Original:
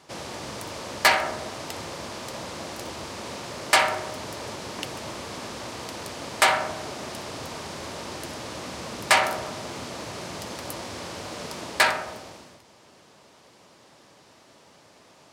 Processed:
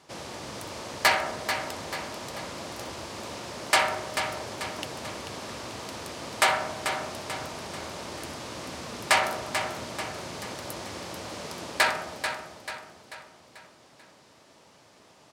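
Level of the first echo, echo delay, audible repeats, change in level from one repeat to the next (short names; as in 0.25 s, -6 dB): -8.0 dB, 0.439 s, 5, -6.5 dB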